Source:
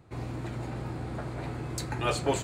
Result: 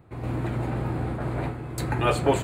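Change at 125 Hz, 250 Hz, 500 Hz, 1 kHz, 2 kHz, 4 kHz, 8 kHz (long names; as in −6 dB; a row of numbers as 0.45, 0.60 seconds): +7.0, +6.5, +6.5, +6.0, +5.0, +1.0, −1.0 decibels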